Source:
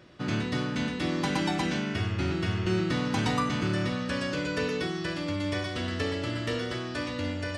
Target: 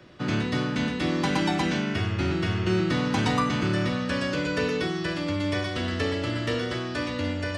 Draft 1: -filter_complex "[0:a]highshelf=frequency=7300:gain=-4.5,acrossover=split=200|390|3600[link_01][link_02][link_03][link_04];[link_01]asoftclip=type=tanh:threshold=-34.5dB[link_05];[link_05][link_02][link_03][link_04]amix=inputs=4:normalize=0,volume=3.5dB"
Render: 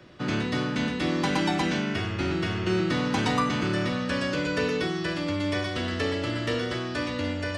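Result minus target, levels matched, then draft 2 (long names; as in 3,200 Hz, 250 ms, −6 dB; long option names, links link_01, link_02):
soft clipping: distortion +12 dB
-filter_complex "[0:a]highshelf=frequency=7300:gain=-4.5,acrossover=split=200|390|3600[link_01][link_02][link_03][link_04];[link_01]asoftclip=type=tanh:threshold=-24.5dB[link_05];[link_05][link_02][link_03][link_04]amix=inputs=4:normalize=0,volume=3.5dB"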